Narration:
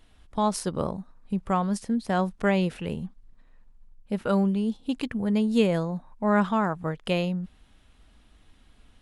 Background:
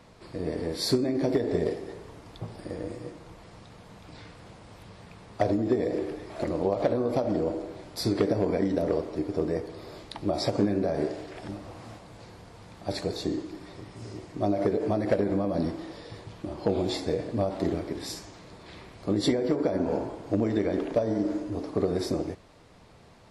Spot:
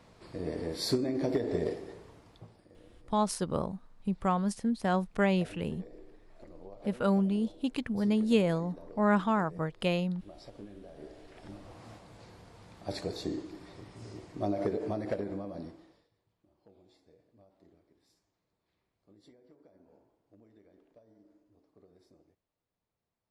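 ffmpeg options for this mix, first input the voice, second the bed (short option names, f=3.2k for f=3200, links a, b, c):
-filter_complex "[0:a]adelay=2750,volume=-3.5dB[a];[1:a]volume=13dB,afade=t=out:st=1.73:d=0.95:silence=0.11885,afade=t=in:st=10.95:d=0.98:silence=0.133352,afade=t=out:st=14.63:d=1.47:silence=0.0334965[b];[a][b]amix=inputs=2:normalize=0"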